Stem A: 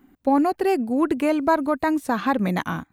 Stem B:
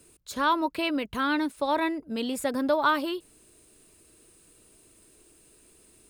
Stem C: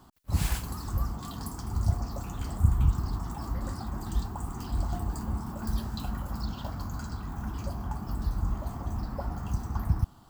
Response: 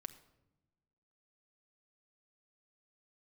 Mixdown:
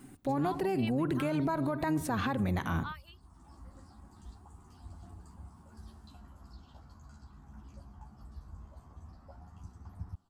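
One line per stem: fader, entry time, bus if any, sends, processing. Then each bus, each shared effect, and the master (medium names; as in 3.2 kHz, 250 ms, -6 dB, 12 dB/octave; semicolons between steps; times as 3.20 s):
-1.0 dB, 0.00 s, bus A, send -4.5 dB, octave divider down 1 oct, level -4 dB
1.26 s -5 dB -> 1.67 s -17.5 dB, 0.00 s, bus A, no send, high-pass 640 Hz 24 dB/octave; reverb removal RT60 1.9 s
-15.5 dB, 0.10 s, no bus, no send, chorus voices 2, 0.2 Hz, delay 13 ms, depth 2.1 ms; low-pass 11 kHz 24 dB/octave; auto duck -17 dB, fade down 0.75 s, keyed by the first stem
bus A: 0.0 dB, peaking EQ 89 Hz +9 dB 0.37 oct; compression, threshold -26 dBFS, peak gain reduction 11 dB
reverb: on, pre-delay 5 ms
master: peak limiter -23 dBFS, peak gain reduction 11 dB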